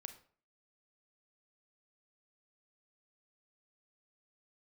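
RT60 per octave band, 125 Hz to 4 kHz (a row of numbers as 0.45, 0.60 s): 0.45, 0.50, 0.45, 0.45, 0.40, 0.35 s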